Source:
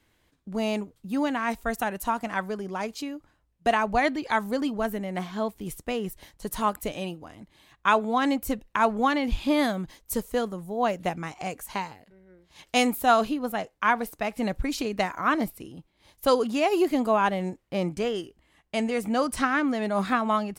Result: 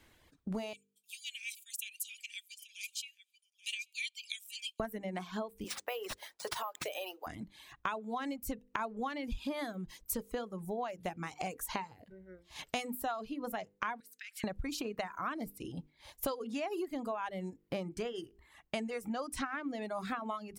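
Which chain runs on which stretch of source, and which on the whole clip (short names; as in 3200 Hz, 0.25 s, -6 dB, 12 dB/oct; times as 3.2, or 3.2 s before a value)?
0.73–4.8 rippled Chebyshev high-pass 2300 Hz, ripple 6 dB + echo 0.833 s -14.5 dB
5.64–7.27 HPF 480 Hz 24 dB/oct + compressor 3:1, threshold -35 dBFS + careless resampling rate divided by 3×, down none, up hold
14–14.44 elliptic high-pass 1500 Hz, stop band 50 dB + compressor 16:1, threshold -44 dBFS
whole clip: notches 50/100/150/200/250/300/350/400/450/500 Hz; compressor 10:1, threshold -38 dBFS; reverb removal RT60 1 s; gain +4 dB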